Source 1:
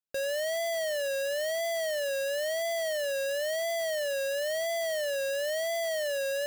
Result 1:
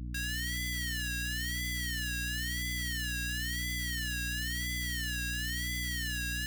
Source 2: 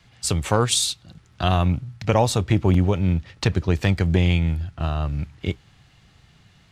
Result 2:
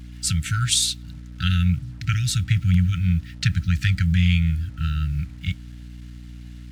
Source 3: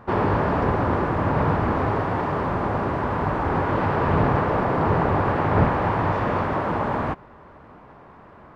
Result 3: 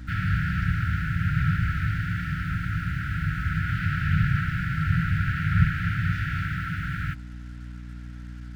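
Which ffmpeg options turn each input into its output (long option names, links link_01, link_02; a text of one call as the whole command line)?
ffmpeg -i in.wav -af "afftfilt=real='re*(1-between(b*sr/4096,190,1300))':imag='im*(1-between(b*sr/4096,190,1300))':win_size=4096:overlap=0.75,acrusher=bits=8:mix=0:aa=0.5,aeval=exprs='val(0)+0.0126*(sin(2*PI*60*n/s)+sin(2*PI*2*60*n/s)/2+sin(2*PI*3*60*n/s)/3+sin(2*PI*4*60*n/s)/4+sin(2*PI*5*60*n/s)/5)':channel_layout=same,volume=1dB" out.wav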